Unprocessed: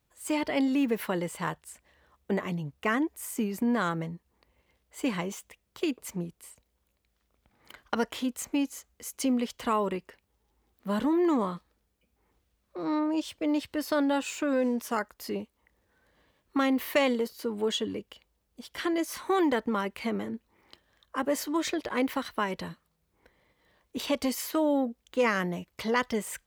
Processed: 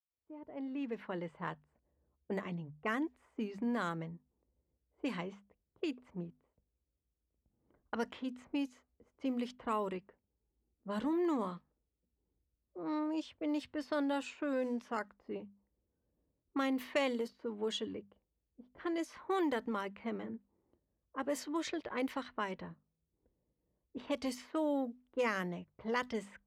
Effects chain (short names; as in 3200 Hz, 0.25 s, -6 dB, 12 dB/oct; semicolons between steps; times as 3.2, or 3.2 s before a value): opening faded in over 1.43 s; low-pass opened by the level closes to 340 Hz, open at -23.5 dBFS; notches 50/100/150/200/250 Hz; gain -8 dB